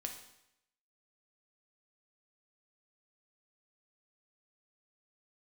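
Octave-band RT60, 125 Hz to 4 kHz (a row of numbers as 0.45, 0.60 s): 0.80, 0.80, 0.80, 0.80, 0.80, 0.80 s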